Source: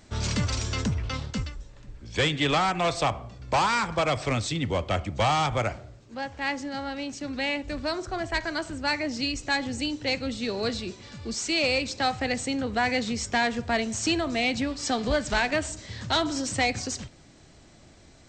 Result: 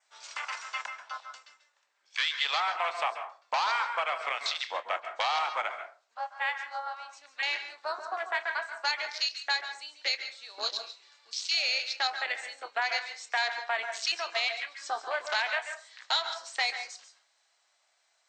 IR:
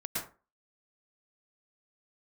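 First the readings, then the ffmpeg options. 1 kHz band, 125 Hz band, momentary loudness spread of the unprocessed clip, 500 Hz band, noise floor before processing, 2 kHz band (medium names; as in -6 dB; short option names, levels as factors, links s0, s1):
-3.5 dB, under -40 dB, 10 LU, -10.5 dB, -53 dBFS, -2.0 dB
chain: -filter_complex "[0:a]highpass=f=780:w=0.5412,highpass=f=780:w=1.3066,afwtdn=0.02,adynamicequalizer=threshold=0.00447:dfrequency=4100:dqfactor=3.4:tfrequency=4100:tqfactor=3.4:attack=5:release=100:ratio=0.375:range=3.5:mode=boostabove:tftype=bell,acompressor=threshold=0.0224:ratio=2.5,asplit=2[s0][s1];[1:a]atrim=start_sample=2205,adelay=27[s2];[s1][s2]afir=irnorm=-1:irlink=0,volume=0.299[s3];[s0][s3]amix=inputs=2:normalize=0,volume=1.5"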